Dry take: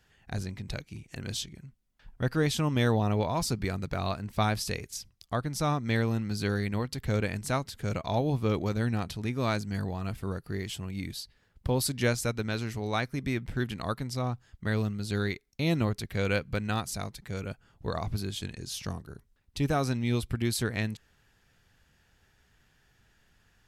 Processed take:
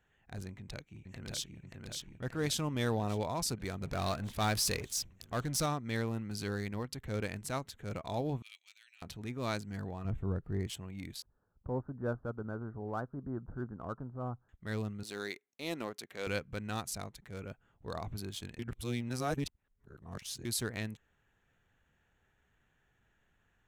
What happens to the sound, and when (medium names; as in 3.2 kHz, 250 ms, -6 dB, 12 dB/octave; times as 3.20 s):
0.47–1.59 s: echo throw 580 ms, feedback 60%, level -2.5 dB
3.81–5.66 s: power-law waveshaper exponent 0.7
8.42–9.02 s: Chebyshev band-pass 2.5–9.1 kHz, order 3
10.05–10.67 s: tilt EQ -3 dB/octave
11.22–14.49 s: steep low-pass 1.5 kHz 72 dB/octave
15.03–16.27 s: high-pass 310 Hz
18.59–20.45 s: reverse
whole clip: local Wiener filter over 9 samples; tone controls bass -3 dB, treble +6 dB; transient shaper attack -5 dB, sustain -1 dB; trim -5 dB